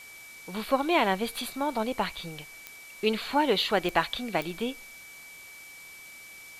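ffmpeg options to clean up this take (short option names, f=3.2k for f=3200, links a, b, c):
-af "adeclick=t=4,bandreject=f=2.3k:w=30,afftdn=nr=26:nf=-47"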